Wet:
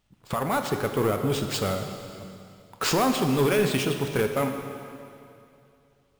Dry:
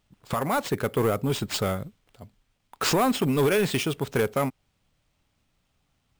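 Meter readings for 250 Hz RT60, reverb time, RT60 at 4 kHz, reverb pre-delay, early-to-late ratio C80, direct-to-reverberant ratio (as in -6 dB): 2.6 s, 2.6 s, 2.4 s, 6 ms, 7.0 dB, 5.0 dB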